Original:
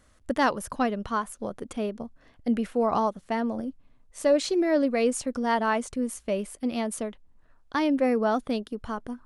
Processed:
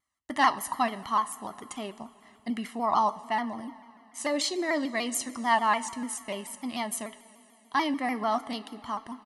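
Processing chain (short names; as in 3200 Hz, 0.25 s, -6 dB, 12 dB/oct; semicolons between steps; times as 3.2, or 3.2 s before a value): HPF 630 Hz 6 dB/oct; gate with hold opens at -53 dBFS; comb 1 ms, depth 84%; two-slope reverb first 0.23 s, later 3.3 s, from -18 dB, DRR 9.5 dB; shaped vibrato saw down 6.8 Hz, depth 100 cents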